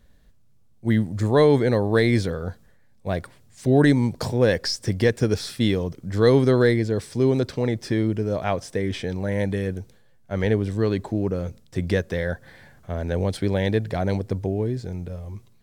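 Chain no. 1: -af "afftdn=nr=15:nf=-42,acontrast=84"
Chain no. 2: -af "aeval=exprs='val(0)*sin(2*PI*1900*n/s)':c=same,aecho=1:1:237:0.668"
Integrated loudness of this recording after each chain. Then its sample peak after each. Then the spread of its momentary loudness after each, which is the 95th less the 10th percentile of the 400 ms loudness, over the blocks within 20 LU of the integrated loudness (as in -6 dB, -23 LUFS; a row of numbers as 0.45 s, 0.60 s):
-17.0 LUFS, -21.5 LUFS; -3.0 dBFS, -6.5 dBFS; 12 LU, 13 LU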